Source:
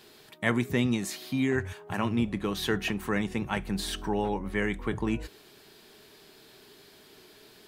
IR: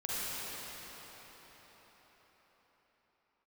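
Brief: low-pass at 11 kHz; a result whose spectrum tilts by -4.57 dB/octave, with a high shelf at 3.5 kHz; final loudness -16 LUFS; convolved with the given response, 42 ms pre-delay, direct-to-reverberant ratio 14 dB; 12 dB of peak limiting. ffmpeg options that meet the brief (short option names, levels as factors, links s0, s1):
-filter_complex "[0:a]lowpass=11000,highshelf=f=3500:g=4,alimiter=limit=0.0944:level=0:latency=1,asplit=2[s0][s1];[1:a]atrim=start_sample=2205,adelay=42[s2];[s1][s2]afir=irnorm=-1:irlink=0,volume=0.0944[s3];[s0][s3]amix=inputs=2:normalize=0,volume=6.31"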